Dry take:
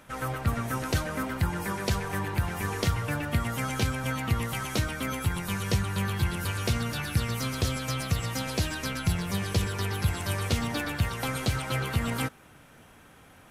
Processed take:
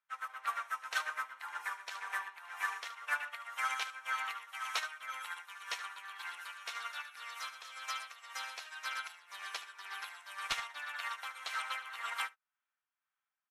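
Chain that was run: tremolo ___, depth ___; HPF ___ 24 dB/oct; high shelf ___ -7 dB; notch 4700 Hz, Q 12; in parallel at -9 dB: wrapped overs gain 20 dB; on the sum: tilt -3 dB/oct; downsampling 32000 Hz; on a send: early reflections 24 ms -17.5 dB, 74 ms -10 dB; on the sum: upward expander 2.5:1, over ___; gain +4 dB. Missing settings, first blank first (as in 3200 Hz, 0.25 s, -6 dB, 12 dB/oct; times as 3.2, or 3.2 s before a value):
1.9 Hz, 40%, 1100 Hz, 11000 Hz, -58 dBFS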